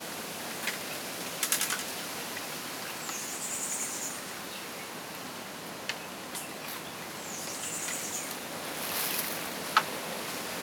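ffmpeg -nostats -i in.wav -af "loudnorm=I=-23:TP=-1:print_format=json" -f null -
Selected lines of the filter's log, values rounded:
"input_i" : "-33.2",
"input_tp" : "-6.8",
"input_lra" : "4.7",
"input_thresh" : "-43.2",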